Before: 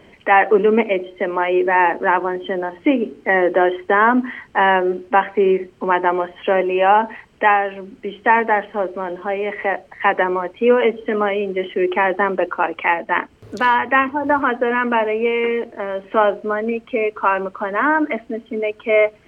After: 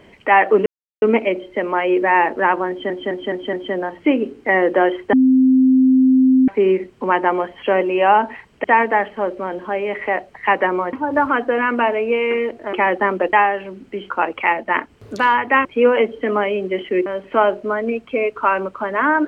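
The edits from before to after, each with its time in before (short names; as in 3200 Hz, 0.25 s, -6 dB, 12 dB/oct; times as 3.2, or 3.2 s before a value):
0.66 insert silence 0.36 s
2.33 stutter 0.21 s, 5 plays
3.93–5.28 bleep 260 Hz -9 dBFS
7.44–8.21 move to 12.51
10.5–11.91 swap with 14.06–15.86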